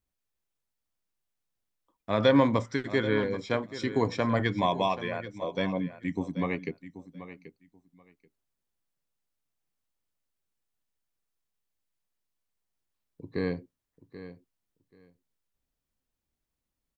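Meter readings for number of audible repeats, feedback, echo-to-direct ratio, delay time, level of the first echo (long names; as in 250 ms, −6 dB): 2, 17%, −14.0 dB, 783 ms, −14.0 dB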